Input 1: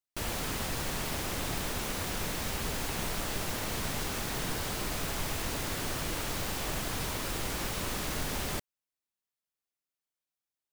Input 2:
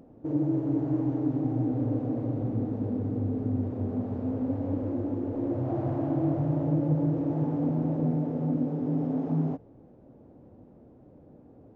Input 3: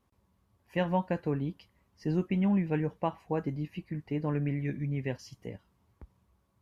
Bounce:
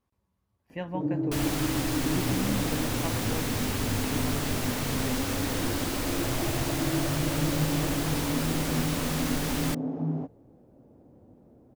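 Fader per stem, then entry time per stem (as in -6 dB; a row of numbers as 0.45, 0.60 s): +2.5, -2.5, -6.0 dB; 1.15, 0.70, 0.00 s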